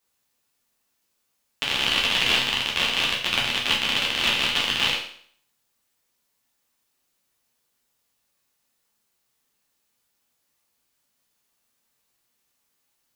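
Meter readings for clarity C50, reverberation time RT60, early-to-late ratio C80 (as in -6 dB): 5.5 dB, 0.55 s, 9.0 dB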